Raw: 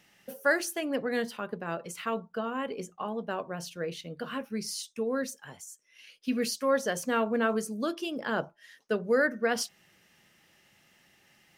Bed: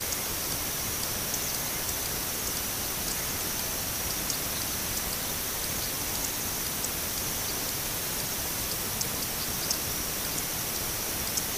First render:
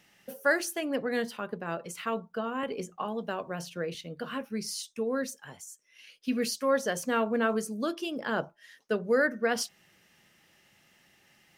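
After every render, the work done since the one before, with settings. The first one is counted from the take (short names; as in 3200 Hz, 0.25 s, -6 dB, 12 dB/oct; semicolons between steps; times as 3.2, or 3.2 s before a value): 2.63–3.95 three-band squash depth 70%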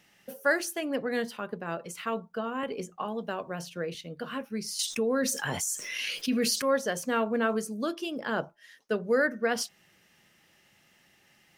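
4.79–6.62 fast leveller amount 70%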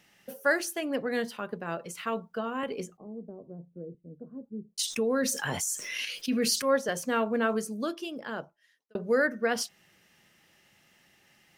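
2.97–4.78 ladder low-pass 510 Hz, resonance 20%; 6.05–6.89 three-band expander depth 40%; 7.73–8.95 fade out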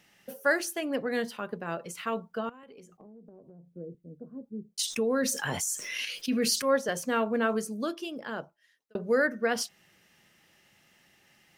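2.49–3.72 compressor 10:1, threshold -47 dBFS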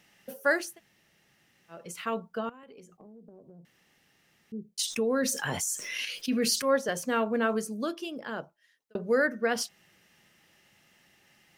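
0.68–1.8 room tone, crossfade 0.24 s; 3.65–4.52 room tone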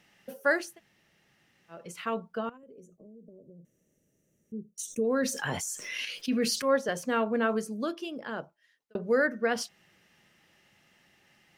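2.57–5.05 spectral gain 660–5600 Hz -19 dB; high shelf 6300 Hz -7 dB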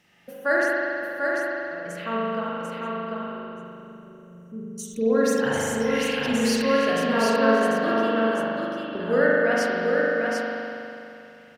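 echo 0.743 s -4 dB; spring tank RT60 2.8 s, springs 40 ms, chirp 30 ms, DRR -6 dB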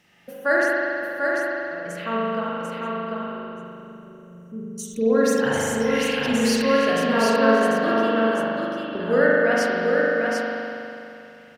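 gain +2 dB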